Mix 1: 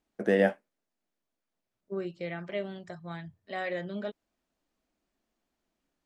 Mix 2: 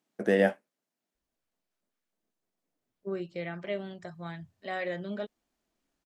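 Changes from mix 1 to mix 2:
first voice: add high shelf 5500 Hz +5.5 dB; second voice: entry +1.15 s

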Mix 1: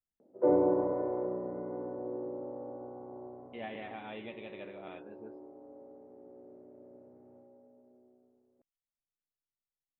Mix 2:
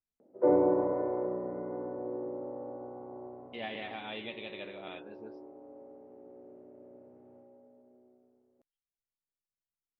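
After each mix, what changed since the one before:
master: remove air absorption 460 m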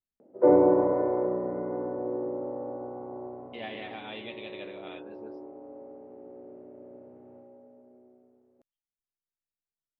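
background +5.5 dB

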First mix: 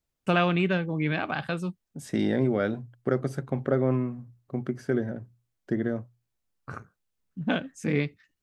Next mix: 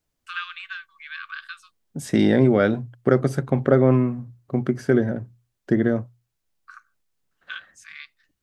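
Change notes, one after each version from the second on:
first voice: add rippled Chebyshev high-pass 1100 Hz, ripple 6 dB; second voice +8.0 dB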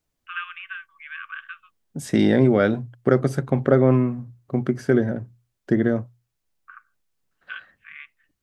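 first voice: add steep low-pass 3100 Hz 72 dB/oct

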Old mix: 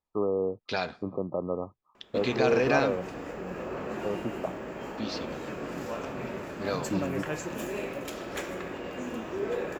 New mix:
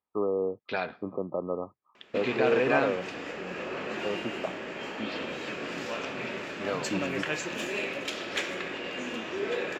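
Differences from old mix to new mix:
second voice: add LPF 1400 Hz 12 dB/oct; background: add high shelf 8300 Hz -11.5 dB; master: add weighting filter D

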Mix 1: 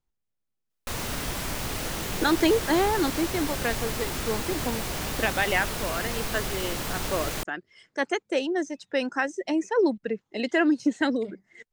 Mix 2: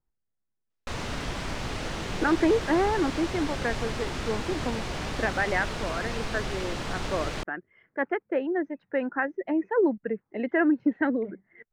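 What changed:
speech: add Chebyshev low-pass 1900 Hz, order 3; master: add air absorption 98 m

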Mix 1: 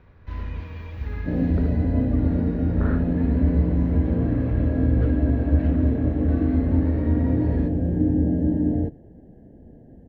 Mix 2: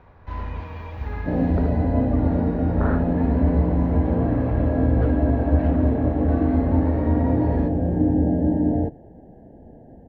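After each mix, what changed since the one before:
master: add bell 820 Hz +11.5 dB 1.2 oct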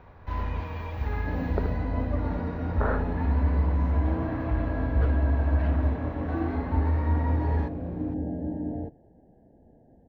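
first sound: add high shelf 6900 Hz +6 dB; second sound -11.5 dB

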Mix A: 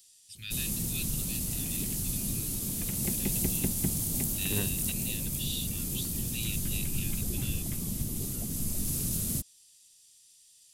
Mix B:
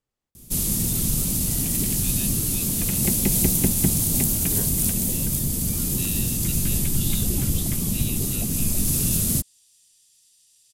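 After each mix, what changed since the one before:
first voice: entry +1.60 s; background +9.5 dB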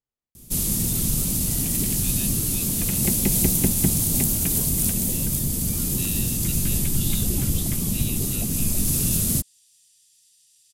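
second voice -9.5 dB

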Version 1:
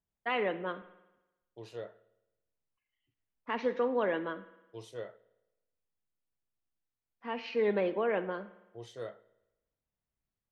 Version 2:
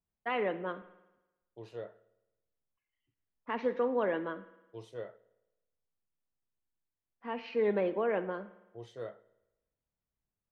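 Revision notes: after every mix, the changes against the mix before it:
master: add high shelf 3200 Hz -9.5 dB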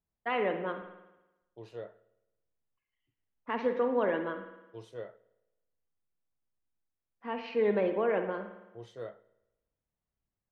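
first voice: send +8.5 dB

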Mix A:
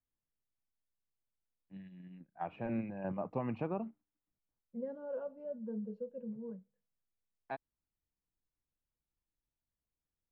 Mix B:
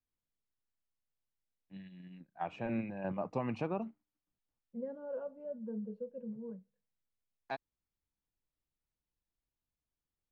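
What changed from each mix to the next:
first voice: remove air absorption 490 m; master: add air absorption 83 m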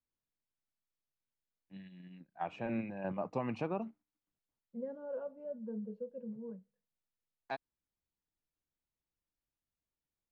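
master: add low shelf 90 Hz -6 dB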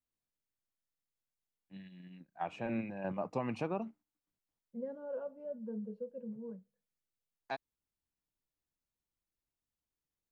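master: remove air absorption 83 m

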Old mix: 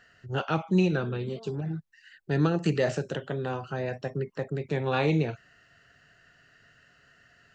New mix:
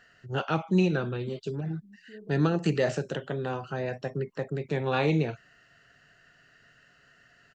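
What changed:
second voice: entry +1.05 s; master: add bell 84 Hz -8.5 dB 0.43 oct

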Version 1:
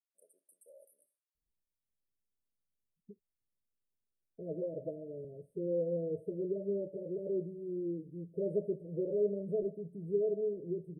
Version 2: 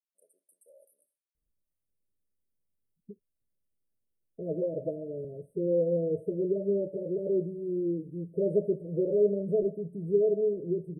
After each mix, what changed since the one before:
second voice +7.0 dB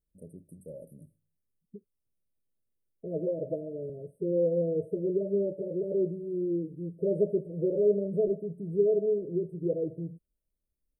first voice: remove Bessel high-pass 1100 Hz, order 4; second voice: entry -1.35 s

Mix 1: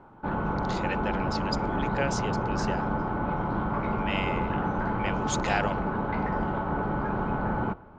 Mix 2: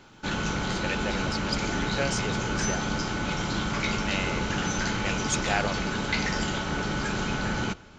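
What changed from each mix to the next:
background: remove synth low-pass 960 Hz, resonance Q 1.9; master: remove air absorption 57 m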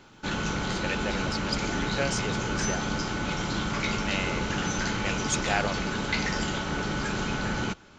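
background: send -9.0 dB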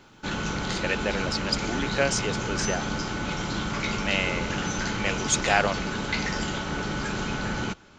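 speech +5.5 dB

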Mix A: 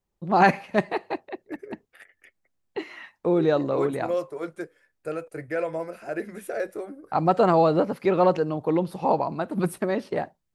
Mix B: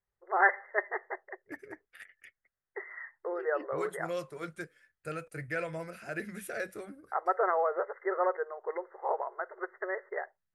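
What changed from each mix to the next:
first voice: add brick-wall FIR band-pass 360–2100 Hz; master: add band shelf 520 Hz -9.5 dB 2.3 oct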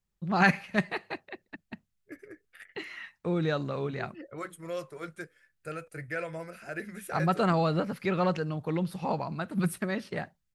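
first voice: remove brick-wall FIR band-pass 360–2100 Hz; second voice: entry +0.60 s

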